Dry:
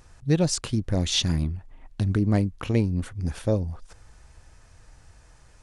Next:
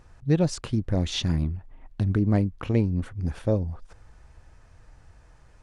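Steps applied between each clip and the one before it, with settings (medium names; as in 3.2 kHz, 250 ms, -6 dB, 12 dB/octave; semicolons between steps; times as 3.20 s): treble shelf 3.7 kHz -11.5 dB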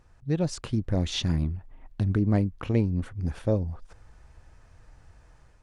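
level rider gain up to 5 dB; trim -6 dB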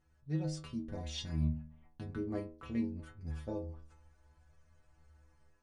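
inharmonic resonator 75 Hz, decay 0.61 s, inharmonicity 0.008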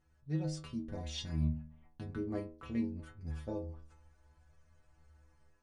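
no audible change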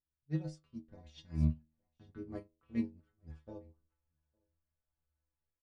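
level-controlled noise filter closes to 2.1 kHz, open at -31.5 dBFS; delay 860 ms -19.5 dB; upward expansion 2.5:1, over -48 dBFS; trim +4 dB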